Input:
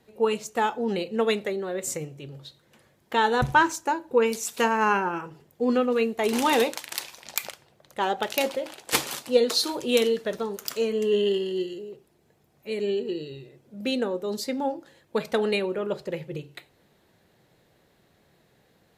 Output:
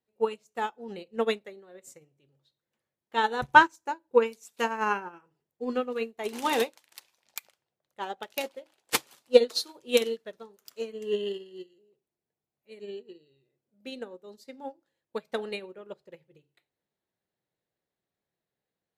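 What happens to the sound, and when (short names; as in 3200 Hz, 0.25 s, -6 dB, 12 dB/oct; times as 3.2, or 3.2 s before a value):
0.89–1.42 low shelf 480 Hz +2.5 dB
whole clip: low shelf 200 Hz -4.5 dB; upward expander 2.5:1, over -35 dBFS; gain +5 dB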